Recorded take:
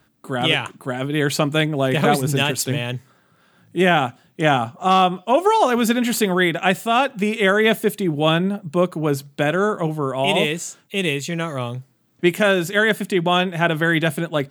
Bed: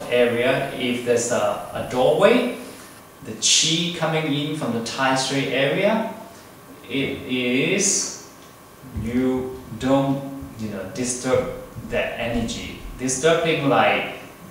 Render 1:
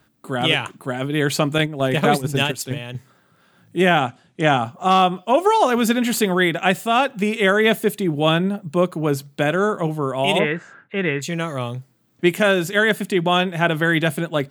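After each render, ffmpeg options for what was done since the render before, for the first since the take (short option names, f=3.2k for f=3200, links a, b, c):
-filter_complex "[0:a]asettb=1/sr,asplit=3[a][b][c];[a]atrim=end=1.584[d];[b]atrim=start=1.58:end=2.95,asetpts=PTS-STARTPTS,afade=t=in:d=0.004:c=qsin,afade=t=out:st=1.366:d=0.004:c=qsin,agate=range=-7dB:threshold=-21dB:ratio=16:release=100:detection=peak[e];[c]atrim=start=2.946[f];[d][e]acrossfade=d=0.004:c1=hsin:c2=qsin[g];[g][f]acrossfade=d=0.004:c1=qsin:c2=hsin,asettb=1/sr,asplit=3[h][i][j];[h]atrim=end=3.994[k];[i]atrim=start=3.99:end=4.65,asetpts=PTS-STARTPTS,afade=t=in:d=0.004:c=qsin,afade=t=out:st=0.656:d=0.004:c=qsin,lowpass=f=9.4k:w=0.5412,lowpass=f=9.4k:w=1.3066[l];[j]atrim=start=4.646[m];[k][l]acrossfade=d=0.004:c1=hsin:c2=qsin[n];[n][m]acrossfade=d=0.004:c1=qsin:c2=hsin,asplit=3[o][p][q];[o]afade=t=out:st=10.38:d=0.02[r];[p]lowpass=f=1.6k:t=q:w=5.3,afade=t=in:st=10.38:d=0.02,afade=t=out:st=11.21:d=0.02[s];[q]afade=t=in:st=11.21:d=0.02[t];[r][s][t]amix=inputs=3:normalize=0"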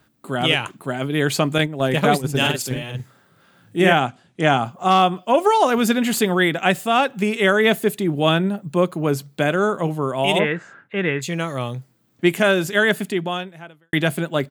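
-filter_complex "[0:a]asplit=3[a][b][c];[a]afade=t=out:st=2.4:d=0.02[d];[b]asplit=2[e][f];[f]adelay=47,volume=-3dB[g];[e][g]amix=inputs=2:normalize=0,afade=t=in:st=2.4:d=0.02,afade=t=out:st=3.92:d=0.02[h];[c]afade=t=in:st=3.92:d=0.02[i];[d][h][i]amix=inputs=3:normalize=0,asplit=2[j][k];[j]atrim=end=13.93,asetpts=PTS-STARTPTS,afade=t=out:st=13:d=0.93:c=qua[l];[k]atrim=start=13.93,asetpts=PTS-STARTPTS,afade=t=in:d=0.004:c=hsin[m];[l][m]concat=n=2:v=0:a=1"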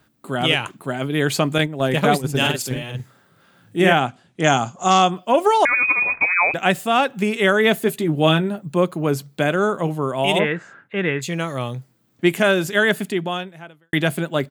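-filter_complex "[0:a]asettb=1/sr,asplit=3[a][b][c];[a]atrim=end=4.444[d];[b]atrim=start=4.44:end=5.11,asetpts=PTS-STARTPTS,afade=t=in:d=0.004:c=qsin,afade=t=out:st=0.666:d=0.004:c=qsin,lowpass=f=6.8k:t=q:w=8[e];[c]atrim=start=5.106[f];[d][e]acrossfade=d=0.004:c1=hsin:c2=qsin[g];[g][f]acrossfade=d=0.004:c1=qsin:c2=hsin,asettb=1/sr,asplit=3[h][i][j];[h]atrim=end=5.654[k];[i]atrim=start=5.65:end=6.54,asetpts=PTS-STARTPTS,afade=t=in:d=0.004:c=qsin,afade=t=out:st=0.886:d=0.004:c=qsin,lowpass=f=2.3k:t=q:w=0.5098,lowpass=f=2.3k:t=q:w=0.6013,lowpass=f=2.3k:t=q:w=0.9,lowpass=f=2.3k:t=q:w=2.563,afreqshift=-2700[l];[j]atrim=start=6.536[m];[k][l]acrossfade=d=0.004:c1=hsin:c2=qsin[n];[n][m]acrossfade=d=0.004:c1=qsin:c2=hsin,asettb=1/sr,asplit=3[o][p][q];[o]atrim=end=7.844[r];[p]atrim=start=7.84:end=8.59,asetpts=PTS-STARTPTS,afade=t=in:d=0.004:c=qsin,afade=t=out:st=0.746:d=0.004:c=qsin,asplit=2[s][t];[t]adelay=13,volume=-8dB[u];[s][u]amix=inputs=2:normalize=0,atrim=end_sample=33075[v];[q]atrim=start=8.586[w];[r][v]acrossfade=d=0.004:c1=hsin:c2=qsin[x];[x][w]acrossfade=d=0.004:c1=qsin:c2=hsin"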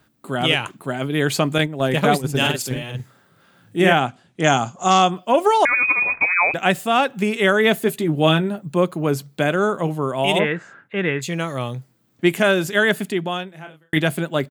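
-filter_complex "[0:a]asplit=3[a][b][c];[a]afade=t=out:st=13.52:d=0.02[d];[b]asplit=2[e][f];[f]adelay=32,volume=-5dB[g];[e][g]amix=inputs=2:normalize=0,afade=t=in:st=13.52:d=0.02,afade=t=out:st=13.98:d=0.02[h];[c]afade=t=in:st=13.98:d=0.02[i];[d][h][i]amix=inputs=3:normalize=0"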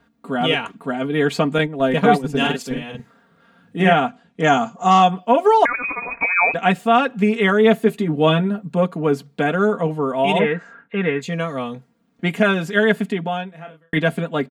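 -af "aemphasis=mode=reproduction:type=75kf,aecho=1:1:4.3:0.81"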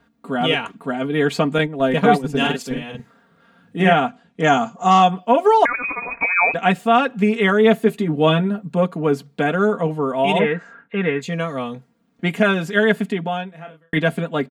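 -af anull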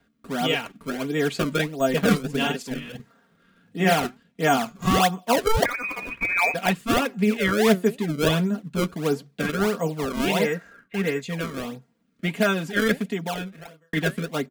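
-filter_complex "[0:a]acrossover=split=370|1100[a][b][c];[b]acrusher=samples=28:mix=1:aa=0.000001:lfo=1:lforange=44.8:lforate=1.5[d];[a][d][c]amix=inputs=3:normalize=0,flanger=delay=1.4:depth=4.2:regen=85:speed=1.6:shape=sinusoidal"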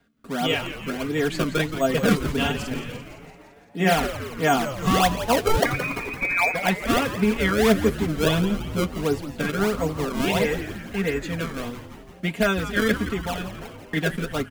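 -filter_complex "[0:a]asplit=9[a][b][c][d][e][f][g][h][i];[b]adelay=170,afreqshift=-140,volume=-11dB[j];[c]adelay=340,afreqshift=-280,volume=-14.9dB[k];[d]adelay=510,afreqshift=-420,volume=-18.8dB[l];[e]adelay=680,afreqshift=-560,volume=-22.6dB[m];[f]adelay=850,afreqshift=-700,volume=-26.5dB[n];[g]adelay=1020,afreqshift=-840,volume=-30.4dB[o];[h]adelay=1190,afreqshift=-980,volume=-34.3dB[p];[i]adelay=1360,afreqshift=-1120,volume=-38.1dB[q];[a][j][k][l][m][n][o][p][q]amix=inputs=9:normalize=0"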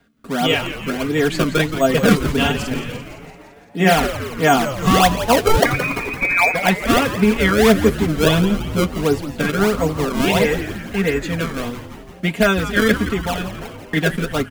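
-af "volume=6dB,alimiter=limit=-1dB:level=0:latency=1"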